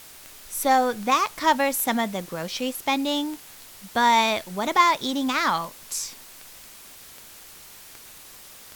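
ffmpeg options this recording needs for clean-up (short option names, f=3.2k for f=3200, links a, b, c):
-af "adeclick=t=4,afftdn=nr=22:nf=-46"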